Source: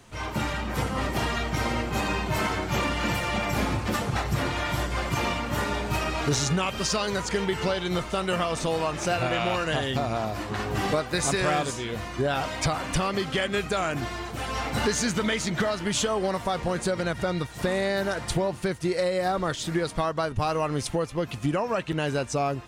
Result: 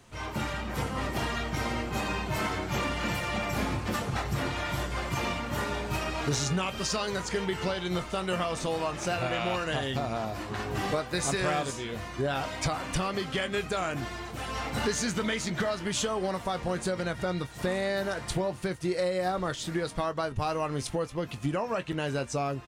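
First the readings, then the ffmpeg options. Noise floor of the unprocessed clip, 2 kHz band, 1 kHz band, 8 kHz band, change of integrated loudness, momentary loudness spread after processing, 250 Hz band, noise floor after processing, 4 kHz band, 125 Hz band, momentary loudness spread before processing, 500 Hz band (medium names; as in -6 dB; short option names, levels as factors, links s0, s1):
-37 dBFS, -4.0 dB, -4.0 dB, -4.0 dB, -4.0 dB, 4 LU, -4.0 dB, -41 dBFS, -4.0 dB, -4.0 dB, 4 LU, -3.5 dB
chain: -filter_complex "[0:a]asplit=2[s0][s1];[s1]adelay=22,volume=0.211[s2];[s0][s2]amix=inputs=2:normalize=0,volume=0.631"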